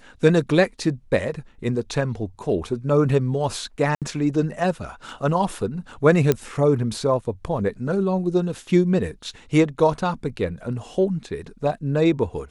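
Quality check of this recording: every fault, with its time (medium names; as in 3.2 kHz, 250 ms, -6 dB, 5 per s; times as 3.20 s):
3.95–4.02 s: dropout 67 ms
6.32 s: pop -6 dBFS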